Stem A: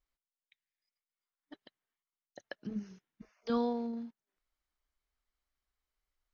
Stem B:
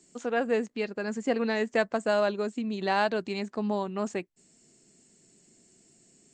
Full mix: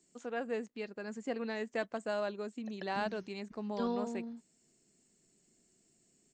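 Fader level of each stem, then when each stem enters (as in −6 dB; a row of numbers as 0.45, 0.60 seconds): −3.5, −10.0 decibels; 0.30, 0.00 seconds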